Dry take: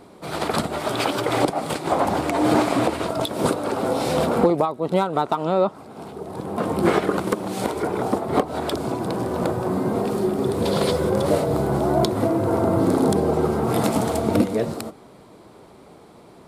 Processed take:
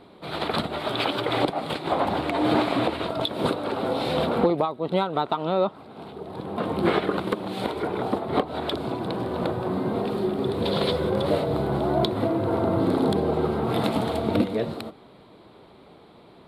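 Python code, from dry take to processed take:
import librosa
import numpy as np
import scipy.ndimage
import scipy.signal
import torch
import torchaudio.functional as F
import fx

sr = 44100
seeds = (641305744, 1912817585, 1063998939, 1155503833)

y = fx.high_shelf_res(x, sr, hz=4800.0, db=-8.0, q=3.0)
y = F.gain(torch.from_numpy(y), -3.5).numpy()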